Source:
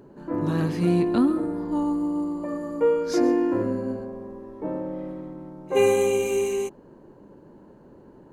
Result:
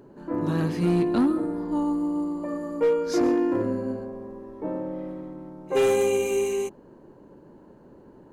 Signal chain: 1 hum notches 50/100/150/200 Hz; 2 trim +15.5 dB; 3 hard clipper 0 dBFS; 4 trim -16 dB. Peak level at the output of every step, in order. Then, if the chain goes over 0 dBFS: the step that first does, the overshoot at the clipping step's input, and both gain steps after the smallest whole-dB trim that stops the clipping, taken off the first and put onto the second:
-9.5 dBFS, +6.0 dBFS, 0.0 dBFS, -16.0 dBFS; step 2, 6.0 dB; step 2 +9.5 dB, step 4 -10 dB

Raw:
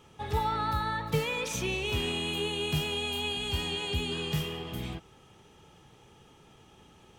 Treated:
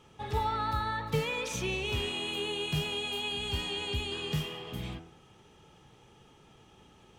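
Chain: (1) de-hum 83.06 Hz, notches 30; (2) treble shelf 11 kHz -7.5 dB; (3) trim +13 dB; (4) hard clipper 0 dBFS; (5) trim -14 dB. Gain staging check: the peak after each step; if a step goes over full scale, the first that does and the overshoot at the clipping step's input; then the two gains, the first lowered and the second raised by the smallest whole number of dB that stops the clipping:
-16.0 dBFS, -16.0 dBFS, -3.0 dBFS, -3.0 dBFS, -17.0 dBFS; nothing clips

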